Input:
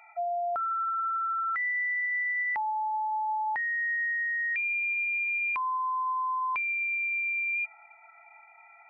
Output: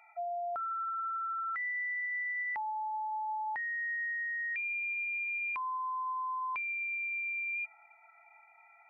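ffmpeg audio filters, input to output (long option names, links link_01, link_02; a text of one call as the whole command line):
ffmpeg -i in.wav -af "volume=-6dB" out.wav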